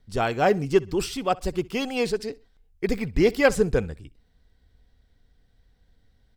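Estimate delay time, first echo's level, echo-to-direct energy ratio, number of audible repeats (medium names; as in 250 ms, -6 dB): 64 ms, -23.0 dB, -22.5 dB, 2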